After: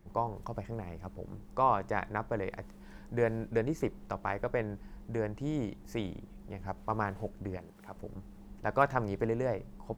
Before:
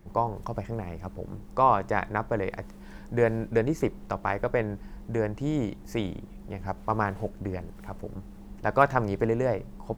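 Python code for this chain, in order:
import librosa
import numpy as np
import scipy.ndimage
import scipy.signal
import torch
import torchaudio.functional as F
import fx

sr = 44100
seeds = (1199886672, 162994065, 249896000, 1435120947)

y = fx.highpass(x, sr, hz=200.0, slope=6, at=(7.57, 7.97))
y = y * librosa.db_to_amplitude(-6.0)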